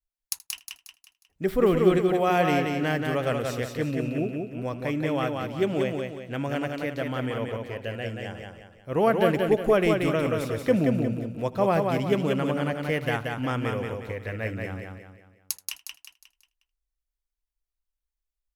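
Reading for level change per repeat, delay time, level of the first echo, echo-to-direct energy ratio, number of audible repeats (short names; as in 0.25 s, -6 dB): no steady repeat, 79 ms, -21.0 dB, -3.0 dB, 8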